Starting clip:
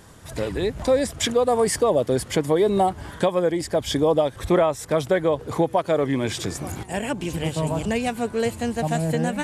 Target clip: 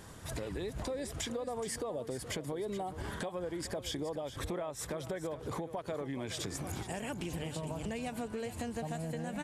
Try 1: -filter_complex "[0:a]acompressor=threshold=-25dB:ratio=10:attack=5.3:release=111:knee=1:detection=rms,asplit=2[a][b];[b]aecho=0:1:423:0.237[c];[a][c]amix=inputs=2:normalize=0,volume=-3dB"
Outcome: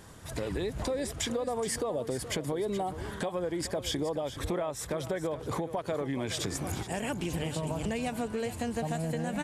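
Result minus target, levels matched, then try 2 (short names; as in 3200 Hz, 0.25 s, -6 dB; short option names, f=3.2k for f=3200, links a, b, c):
compressor: peak gain reduction -6 dB
-filter_complex "[0:a]acompressor=threshold=-31.5dB:ratio=10:attack=5.3:release=111:knee=1:detection=rms,asplit=2[a][b];[b]aecho=0:1:423:0.237[c];[a][c]amix=inputs=2:normalize=0,volume=-3dB"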